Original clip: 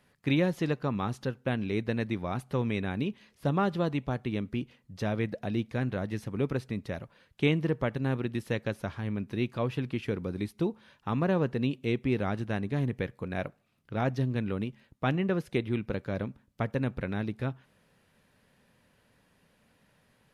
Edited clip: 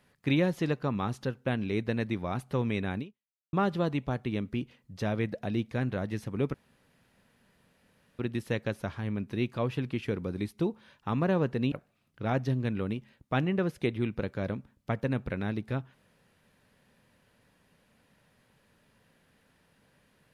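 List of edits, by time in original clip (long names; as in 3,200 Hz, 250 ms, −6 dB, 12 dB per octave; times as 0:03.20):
0:02.98–0:03.53: fade out exponential
0:06.54–0:08.19: fill with room tone
0:11.72–0:13.43: remove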